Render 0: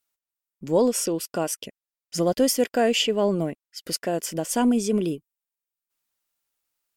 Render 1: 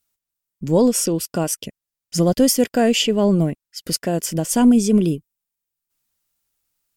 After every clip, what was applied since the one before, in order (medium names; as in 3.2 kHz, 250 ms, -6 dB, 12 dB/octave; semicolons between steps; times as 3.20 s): tone controls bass +11 dB, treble +4 dB; trim +2 dB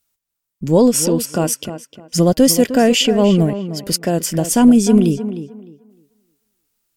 tape echo 305 ms, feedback 25%, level -10 dB, low-pass 2.8 kHz; trim +3.5 dB